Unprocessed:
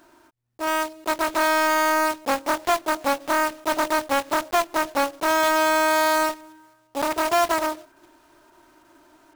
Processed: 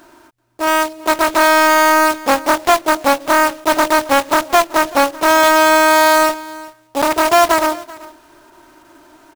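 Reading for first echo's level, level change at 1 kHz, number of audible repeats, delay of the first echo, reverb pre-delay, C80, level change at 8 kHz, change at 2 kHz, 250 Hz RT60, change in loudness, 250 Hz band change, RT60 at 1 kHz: -20.5 dB, +9.0 dB, 1, 385 ms, no reverb, no reverb, +9.0 dB, +9.0 dB, no reverb, +9.0 dB, +9.0 dB, no reverb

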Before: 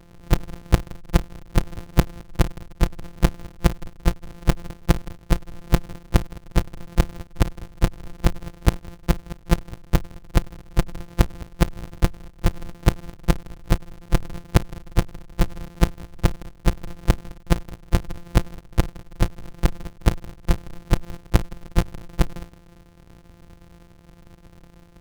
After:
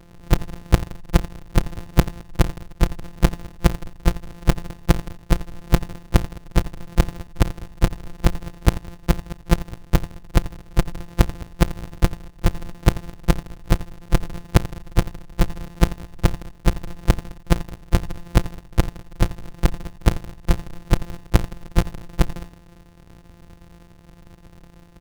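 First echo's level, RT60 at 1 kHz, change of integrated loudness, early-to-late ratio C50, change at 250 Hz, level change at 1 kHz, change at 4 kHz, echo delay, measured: -17.0 dB, no reverb, +1.5 dB, no reverb, +1.5 dB, +1.5 dB, +1.5 dB, 86 ms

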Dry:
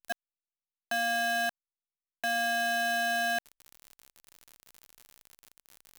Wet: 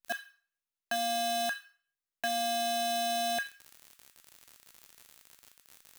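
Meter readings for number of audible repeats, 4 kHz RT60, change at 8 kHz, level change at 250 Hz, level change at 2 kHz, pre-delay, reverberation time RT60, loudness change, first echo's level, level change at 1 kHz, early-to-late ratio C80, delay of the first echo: no echo, 0.40 s, +2.0 dB, 0.0 dB, -8.5 dB, 12 ms, 0.50 s, -2.5 dB, no echo, 0.0 dB, 16.5 dB, no echo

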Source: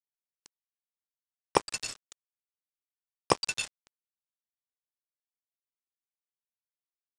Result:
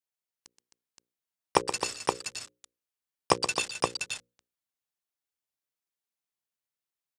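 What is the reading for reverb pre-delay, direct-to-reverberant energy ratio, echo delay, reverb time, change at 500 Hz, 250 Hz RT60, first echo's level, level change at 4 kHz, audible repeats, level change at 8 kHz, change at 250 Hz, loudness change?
no reverb, no reverb, 125 ms, no reverb, +3.0 dB, no reverb, -10.5 dB, +3.5 dB, 3, +3.5 dB, +2.5 dB, +1.0 dB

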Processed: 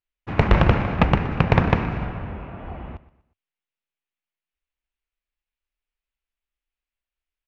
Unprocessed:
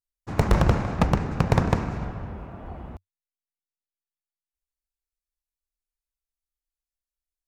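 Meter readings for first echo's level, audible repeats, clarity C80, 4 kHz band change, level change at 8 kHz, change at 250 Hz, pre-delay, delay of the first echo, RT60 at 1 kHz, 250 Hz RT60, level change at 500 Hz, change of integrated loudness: -17.5 dB, 3, no reverb, +4.5 dB, under -10 dB, +3.0 dB, no reverb, 121 ms, no reverb, no reverb, +3.5 dB, +3.5 dB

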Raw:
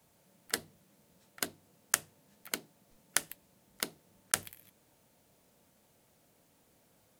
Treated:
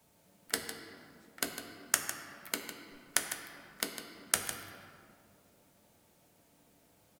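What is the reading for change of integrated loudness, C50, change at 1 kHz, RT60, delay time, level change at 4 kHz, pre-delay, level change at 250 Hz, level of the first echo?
-0.5 dB, 5.0 dB, +1.5 dB, 2.1 s, 154 ms, +1.0 dB, 3 ms, +3.0 dB, -10.5 dB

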